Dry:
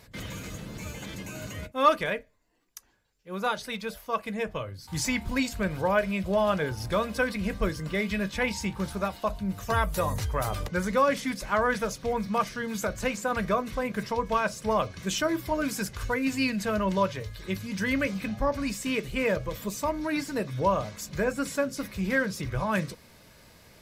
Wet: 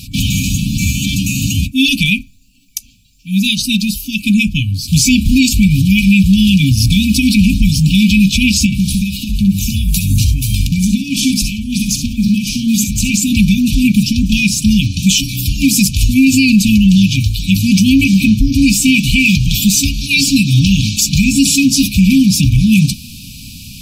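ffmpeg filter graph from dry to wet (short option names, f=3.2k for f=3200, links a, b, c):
-filter_complex "[0:a]asettb=1/sr,asplit=3[a][b][c];[a]atrim=end=3.554[d];[b]atrim=start=3.55:end=4.04,asetpts=PTS-STARTPTS,afade=t=in:d=0.004:c=qsin,afade=t=out:st=0.486:d=0.004:c=qsin,equalizer=f=2.3k:w=4.2:g=-10,bandreject=f=3.4k:w=8.7[e];[c]atrim=start=4.036[f];[d][e]acrossfade=d=0.004:c1=hsin:c2=qsin[g];[g][f]acrossfade=d=0.004:c1=qsin:c2=hsin,asettb=1/sr,asplit=3[h][i][j];[h]atrim=end=8.664[k];[i]atrim=start=8.66:end=13.14,asetpts=PTS-STARTPTS,afade=t=in:d=0.004:c=qsin,afade=t=out:st=4.476:d=0.004:c=qsin,acompressor=threshold=-34dB:ratio=3:attack=3.2:release=140:knee=1:detection=peak,aecho=1:1:61|70:0.299|0.251,atrim=end_sample=197568[l];[j]atrim=start=13.136[m];[k][l]acrossfade=d=0.004:c1=hsin:c2=qsin[n];[n][m]acrossfade=d=0.004:c1=qsin:c2=hsin,asettb=1/sr,asplit=3[o][p][q];[o]atrim=end=19.034[r];[p]atrim=start=19.03:end=21.89,asetpts=PTS-STARTPTS,afade=t=in:d=0.004:c=qsin,afade=t=out:st=2.856:d=0.004:c=qsin,equalizer=f=3.8k:w=0.51:g=6,volume=15dB,asoftclip=hard,volume=-15dB[s];[q]atrim=start=21.886[t];[r][s]acrossfade=d=0.004:c1=hsin:c2=qsin[u];[u][t]acrossfade=d=0.004:c1=qsin:c2=hsin,afftfilt=real='re*(1-between(b*sr/4096,290,2300))':imag='im*(1-between(b*sr/4096,290,2300))':win_size=4096:overlap=0.75,alimiter=level_in=25.5dB:limit=-1dB:release=50:level=0:latency=1,volume=-1dB"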